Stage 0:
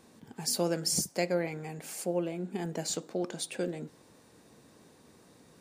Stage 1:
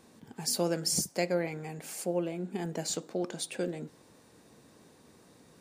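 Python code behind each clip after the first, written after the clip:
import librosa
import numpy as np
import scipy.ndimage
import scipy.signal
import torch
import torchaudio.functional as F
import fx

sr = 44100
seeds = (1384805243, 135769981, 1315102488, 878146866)

y = x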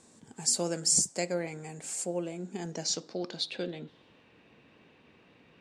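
y = fx.filter_sweep_lowpass(x, sr, from_hz=7800.0, to_hz=2700.0, start_s=2.29, end_s=4.27, q=4.5)
y = F.gain(torch.from_numpy(y), -2.5).numpy()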